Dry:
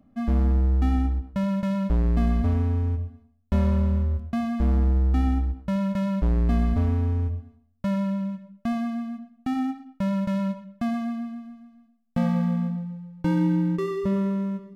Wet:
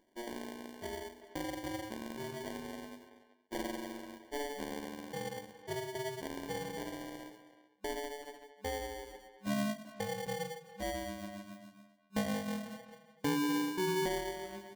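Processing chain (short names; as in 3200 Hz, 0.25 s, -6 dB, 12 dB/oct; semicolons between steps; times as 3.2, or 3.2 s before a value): gliding pitch shift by -12 st ending unshifted; tilt +3 dB/oct; in parallel at 0 dB: compressor, threshold -48 dBFS, peak gain reduction 20 dB; on the sum: FFT band-pass 200–1700 Hz; sample-rate reducer 1300 Hz, jitter 0%; speakerphone echo 0.38 s, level -14 dB; gain -1 dB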